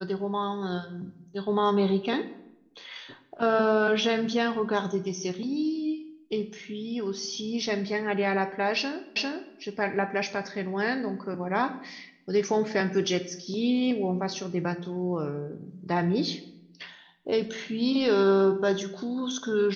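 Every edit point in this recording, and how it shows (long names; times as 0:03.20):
0:09.16: the same again, the last 0.4 s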